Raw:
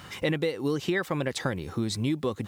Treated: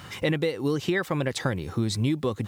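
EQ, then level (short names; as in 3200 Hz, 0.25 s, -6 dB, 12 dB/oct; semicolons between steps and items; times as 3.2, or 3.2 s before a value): bell 110 Hz +4 dB 0.77 oct; +1.5 dB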